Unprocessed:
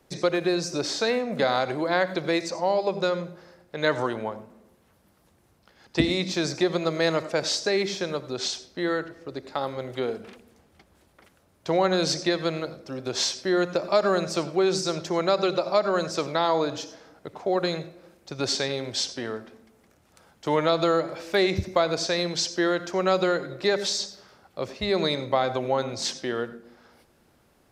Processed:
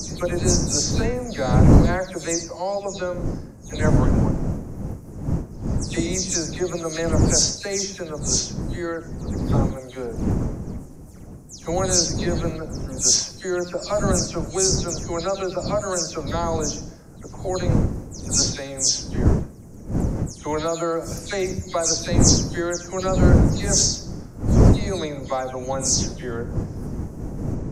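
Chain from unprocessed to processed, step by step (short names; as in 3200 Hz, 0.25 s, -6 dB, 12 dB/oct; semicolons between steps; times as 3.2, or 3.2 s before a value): spectral delay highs early, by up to 0.168 s; wind noise 200 Hz -22 dBFS; resonant high shelf 4800 Hz +10.5 dB, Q 3; gain -1.5 dB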